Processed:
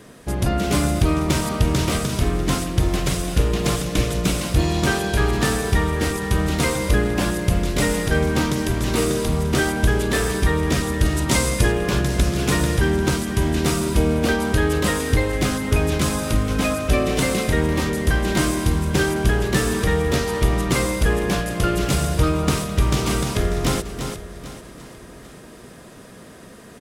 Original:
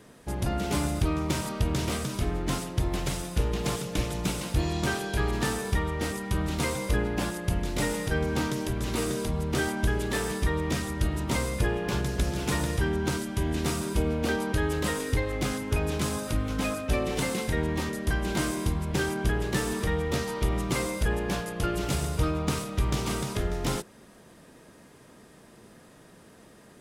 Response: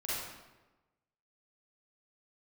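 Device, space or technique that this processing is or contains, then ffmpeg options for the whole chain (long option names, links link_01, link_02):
ducked delay: -filter_complex "[0:a]bandreject=frequency=870:width=12,asplit=3[link_01][link_02][link_03];[link_02]adelay=341,volume=-2dB[link_04];[link_03]apad=whole_len=1197021[link_05];[link_04][link_05]sidechaincompress=threshold=-40dB:ratio=3:attack=28:release=539[link_06];[link_01][link_06]amix=inputs=2:normalize=0,asettb=1/sr,asplit=3[link_07][link_08][link_09];[link_07]atrim=end=11.054[link_10];[link_08]atrim=start=11.05:end=11.72,asetpts=PTS-STARTPTS,afade=type=in:duration=0.004:curve=qsin,afade=type=out:start_time=0.666:duration=0.004:curve=qsin,equalizer=frequency=7600:width=0.5:gain=6[link_11];[link_09]atrim=start=11.716[link_12];[link_10][link_11]acrossfade=duration=0.004:curve1=hsin:curve2=qsin[link_13];[link_13][link_12]acrossfade=duration=0.004:curve1=qsin:curve2=hsin,aecho=1:1:791|1582|2373:0.158|0.0475|0.0143,volume=8dB"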